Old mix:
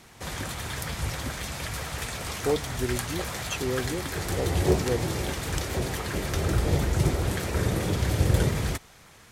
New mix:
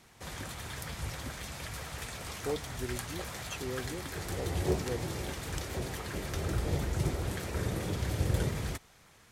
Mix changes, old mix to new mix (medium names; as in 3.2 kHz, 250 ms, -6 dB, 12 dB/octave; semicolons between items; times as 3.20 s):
speech -9.0 dB; background -7.5 dB